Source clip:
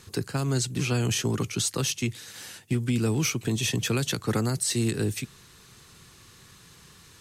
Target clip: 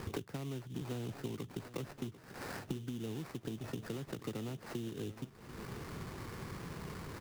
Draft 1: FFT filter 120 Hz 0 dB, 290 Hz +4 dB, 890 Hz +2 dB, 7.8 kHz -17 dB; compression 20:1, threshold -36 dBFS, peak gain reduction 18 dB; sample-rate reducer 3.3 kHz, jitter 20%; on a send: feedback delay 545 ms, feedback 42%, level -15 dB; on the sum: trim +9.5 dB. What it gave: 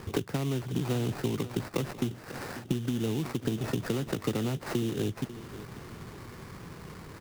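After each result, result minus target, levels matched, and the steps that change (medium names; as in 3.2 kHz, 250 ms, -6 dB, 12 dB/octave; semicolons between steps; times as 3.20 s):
compression: peak gain reduction -11 dB; echo 198 ms early
change: compression 20:1, threshold -47.5 dBFS, peak gain reduction 29 dB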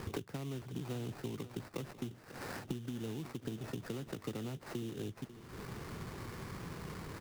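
echo 198 ms early
change: feedback delay 743 ms, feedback 42%, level -15 dB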